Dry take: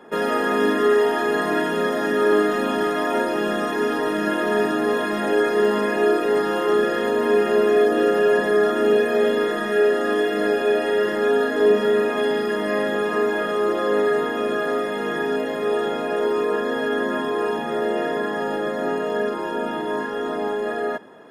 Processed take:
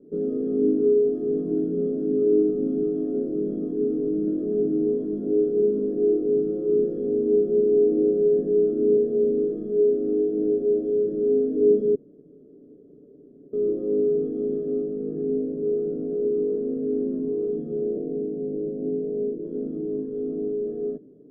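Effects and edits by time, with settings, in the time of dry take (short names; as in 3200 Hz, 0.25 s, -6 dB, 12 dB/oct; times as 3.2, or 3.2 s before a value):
11.95–13.53 room tone
14.81–17.42 brick-wall FIR band-stop 3000–8500 Hz
17.97–19.45 Chebyshev low-pass 720 Hz, order 5
whole clip: inverse Chebyshev low-pass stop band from 790 Hz, stop band 40 dB; comb 7 ms, depth 46%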